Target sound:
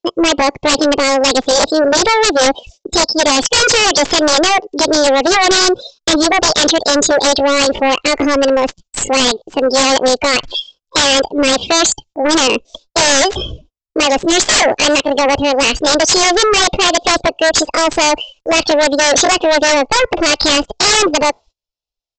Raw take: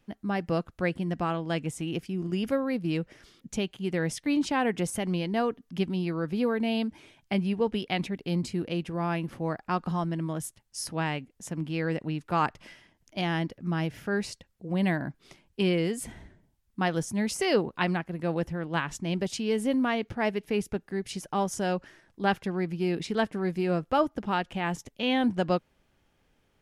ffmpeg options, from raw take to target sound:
ffmpeg -i in.wav -af "alimiter=limit=-19dB:level=0:latency=1:release=49,afftdn=noise_reduction=26:noise_floor=-44,asetrate=52920,aresample=44100,equalizer=frequency=460:width=0.71:gain=13.5,asetrate=60591,aresample=44100,atempo=0.727827,asubboost=boost=5.5:cutoff=83,aexciter=amount=10.6:drive=5.8:freq=2700,aeval=exprs='2.11*(cos(1*acos(clip(val(0)/2.11,-1,1)))-cos(1*PI/2))+0.119*(cos(2*acos(clip(val(0)/2.11,-1,1)))-cos(2*PI/2))+0.841*(cos(3*acos(clip(val(0)/2.11,-1,1)))-cos(3*PI/2))+0.376*(cos(5*acos(clip(val(0)/2.11,-1,1)))-cos(5*PI/2))':channel_layout=same,aresample=16000,aeval=exprs='0.75*sin(PI/2*8.91*val(0)/0.75)':channel_layout=same,aresample=44100,agate=range=-25dB:threshold=-34dB:ratio=16:detection=peak,volume=-5dB" out.wav

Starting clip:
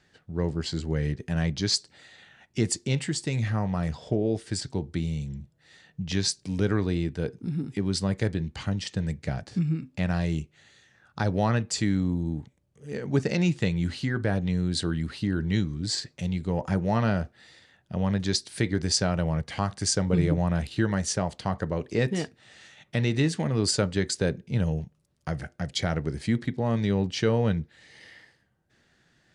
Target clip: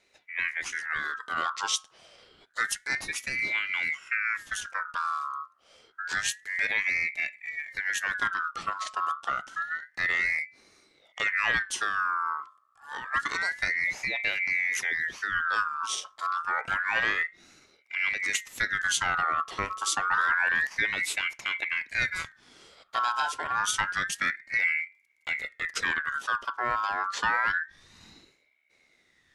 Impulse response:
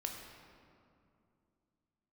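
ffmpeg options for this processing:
-af "bandreject=frequency=50:width_type=h:width=6,bandreject=frequency=100:width_type=h:width=6,bandreject=frequency=150:width_type=h:width=6,asubboost=boost=7.5:cutoff=63,aeval=exprs='val(0)*sin(2*PI*1700*n/s+1700*0.3/0.28*sin(2*PI*0.28*n/s))':channel_layout=same"

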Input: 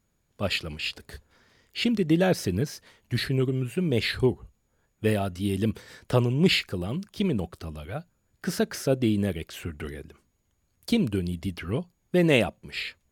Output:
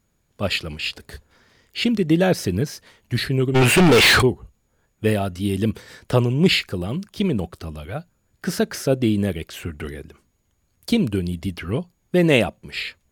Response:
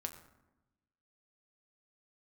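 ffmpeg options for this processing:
-filter_complex "[0:a]asplit=3[link_01][link_02][link_03];[link_01]afade=type=out:start_time=3.54:duration=0.02[link_04];[link_02]asplit=2[link_05][link_06];[link_06]highpass=frequency=720:poles=1,volume=37dB,asoftclip=type=tanh:threshold=-10.5dB[link_07];[link_05][link_07]amix=inputs=2:normalize=0,lowpass=frequency=4900:poles=1,volume=-6dB,afade=type=in:start_time=3.54:duration=0.02,afade=type=out:start_time=4.21:duration=0.02[link_08];[link_03]afade=type=in:start_time=4.21:duration=0.02[link_09];[link_04][link_08][link_09]amix=inputs=3:normalize=0,volume=4.5dB"

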